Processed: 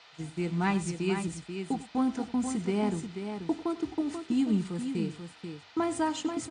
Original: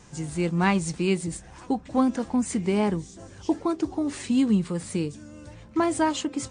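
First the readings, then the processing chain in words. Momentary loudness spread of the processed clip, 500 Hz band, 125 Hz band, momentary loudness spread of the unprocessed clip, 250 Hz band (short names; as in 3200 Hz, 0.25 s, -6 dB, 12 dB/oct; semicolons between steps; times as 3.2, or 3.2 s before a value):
8 LU, -5.5 dB, -5.0 dB, 11 LU, -5.0 dB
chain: gate -32 dBFS, range -22 dB; notches 50/100 Hz; band noise 460–4400 Hz -49 dBFS; notch comb 550 Hz; on a send: tapped delay 96/486 ms -16.5/-7.5 dB; on the sum: gain -5.5 dB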